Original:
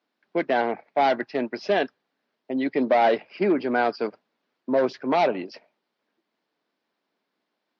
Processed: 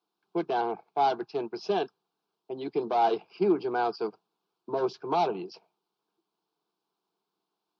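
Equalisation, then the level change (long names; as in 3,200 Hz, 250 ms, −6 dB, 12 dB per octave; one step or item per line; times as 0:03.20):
phaser with its sweep stopped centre 380 Hz, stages 8
−1.5 dB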